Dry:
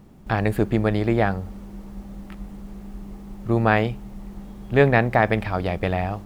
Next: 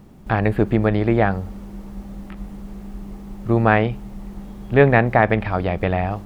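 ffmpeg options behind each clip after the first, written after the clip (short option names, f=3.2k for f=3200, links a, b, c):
-filter_complex "[0:a]acrossover=split=3500[a][b];[b]acompressor=threshold=-58dB:ratio=4:attack=1:release=60[c];[a][c]amix=inputs=2:normalize=0,volume=3dB"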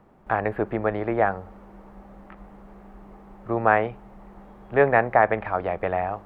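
-filter_complex "[0:a]acrossover=split=440 2000:gain=0.2 1 0.112[a][b][c];[a][b][c]amix=inputs=3:normalize=0"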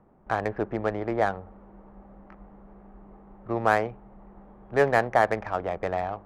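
-af "adynamicsmooth=sensitivity=2.5:basefreq=1.8k,volume=-3dB"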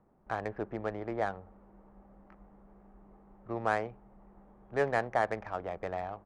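-af "aresample=22050,aresample=44100,volume=-8dB"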